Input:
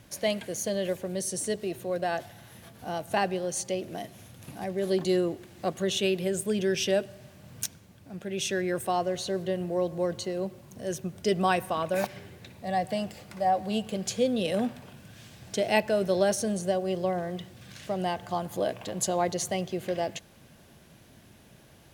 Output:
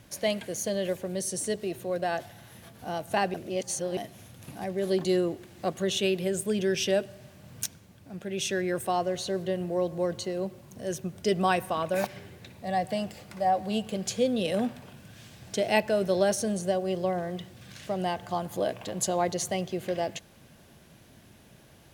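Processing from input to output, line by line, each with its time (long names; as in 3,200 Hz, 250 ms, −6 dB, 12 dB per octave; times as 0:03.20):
0:03.34–0:03.97: reverse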